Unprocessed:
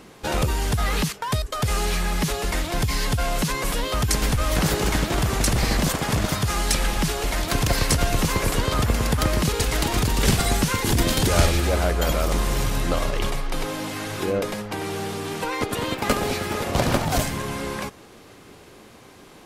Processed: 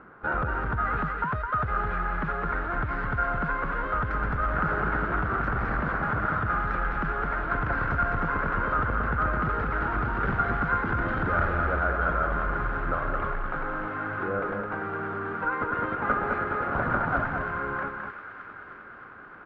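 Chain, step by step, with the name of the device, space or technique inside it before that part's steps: echo 0.212 s -5.5 dB; thin delay 0.311 s, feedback 77%, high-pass 1700 Hz, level -9 dB; overdriven synthesiser ladder filter (soft clip -15 dBFS, distortion -16 dB; ladder low-pass 1500 Hz, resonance 80%); gain +5.5 dB

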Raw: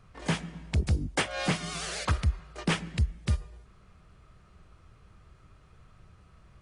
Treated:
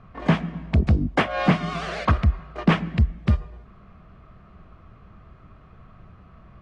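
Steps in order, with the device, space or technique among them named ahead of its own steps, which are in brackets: inside a cardboard box (LPF 2600 Hz 12 dB/oct; small resonant body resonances 220/670/1100 Hz, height 7 dB, ringing for 25 ms); gain +6.5 dB

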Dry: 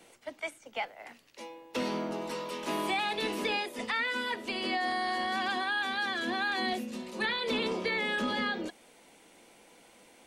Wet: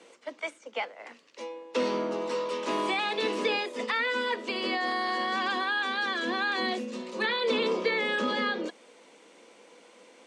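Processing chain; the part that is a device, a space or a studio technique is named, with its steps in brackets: television speaker (speaker cabinet 200–7900 Hz, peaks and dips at 490 Hz +7 dB, 760 Hz -4 dB, 1100 Hz +5 dB); gain +2 dB

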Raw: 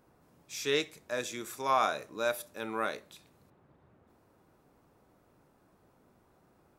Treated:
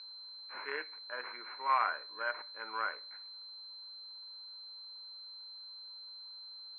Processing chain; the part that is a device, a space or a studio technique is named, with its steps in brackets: toy sound module (decimation joined by straight lines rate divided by 8×; pulse-width modulation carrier 4100 Hz; speaker cabinet 670–3900 Hz, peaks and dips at 670 Hz -6 dB, 1000 Hz +8 dB, 1500 Hz +10 dB, 2300 Hz +10 dB, 3300 Hz -5 dB); gain -5 dB

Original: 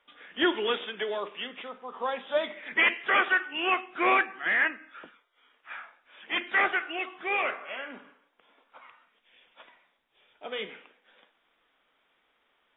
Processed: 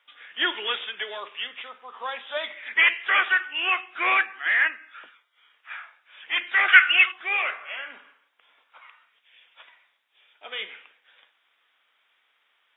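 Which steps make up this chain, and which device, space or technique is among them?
6.68–7.12 band shelf 2000 Hz +13 dB; filter by subtraction (in parallel: LPF 2200 Hz 12 dB/oct + phase invert); on the sum: gain +3 dB

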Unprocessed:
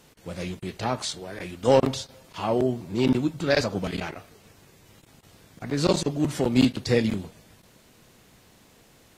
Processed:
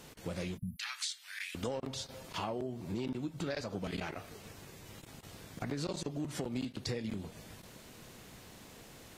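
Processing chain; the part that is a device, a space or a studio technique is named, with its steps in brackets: 0.76–1.55 inverse Chebyshev high-pass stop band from 510 Hz, stop band 60 dB; 0.58–0.79 spectral delete 240–9900 Hz; serial compression, leveller first (compressor 2.5:1, threshold -26 dBFS, peak gain reduction 9 dB; compressor 4:1, threshold -39 dBFS, peak gain reduction 15 dB); gain +2.5 dB

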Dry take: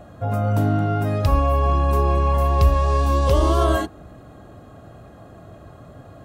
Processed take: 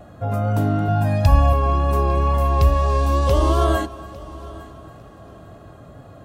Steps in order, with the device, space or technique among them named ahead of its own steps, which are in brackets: multi-head tape echo (multi-head echo 0.284 s, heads first and third, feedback 45%, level -20.5 dB; wow and flutter 18 cents); 0.88–1.53 comb 1.2 ms, depth 82%

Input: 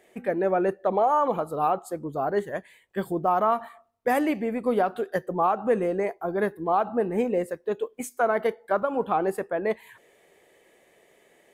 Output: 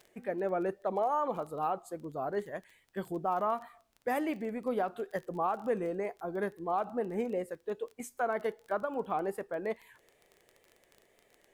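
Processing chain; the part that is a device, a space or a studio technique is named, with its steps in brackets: vinyl LP (wow and flutter; crackle 20/s -33 dBFS; pink noise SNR 44 dB); gain -8.5 dB

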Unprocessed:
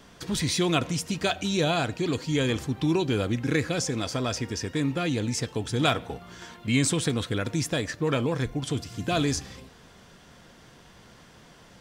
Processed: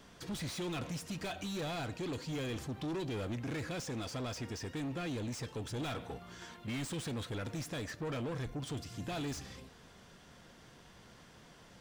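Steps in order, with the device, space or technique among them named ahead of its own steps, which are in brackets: saturation between pre-emphasis and de-emphasis (high shelf 3400 Hz +11 dB; soft clip -29 dBFS, distortion -6 dB; high shelf 3400 Hz -11 dB); gain -5.5 dB

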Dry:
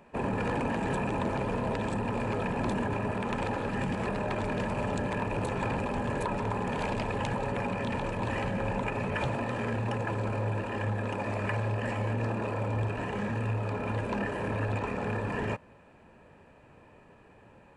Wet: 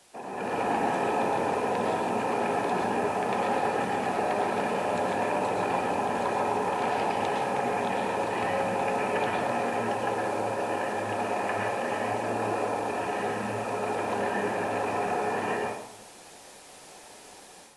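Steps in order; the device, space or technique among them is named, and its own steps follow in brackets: filmed off a television (BPF 280–6200 Hz; bell 740 Hz +11 dB 0.24 oct; reverb RT60 0.85 s, pre-delay 0.104 s, DRR -1.5 dB; white noise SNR 20 dB; AGC gain up to 9 dB; gain -9 dB; AAC 48 kbps 24000 Hz)

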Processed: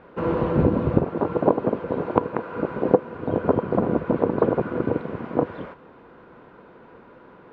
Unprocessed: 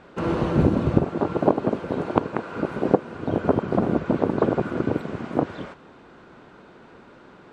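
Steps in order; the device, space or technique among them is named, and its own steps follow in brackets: inside a cardboard box (LPF 2500 Hz 12 dB/oct; small resonant body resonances 490/990 Hz, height 7 dB); gain -1 dB

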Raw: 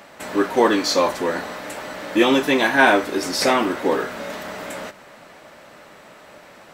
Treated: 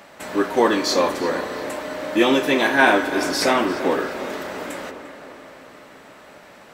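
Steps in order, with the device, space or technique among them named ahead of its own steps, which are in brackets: dub delay into a spring reverb (darkening echo 0.348 s, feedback 61%, low-pass 3900 Hz, level -13 dB; spring tank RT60 4 s, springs 34 ms, chirp 35 ms, DRR 11 dB); gain -1 dB

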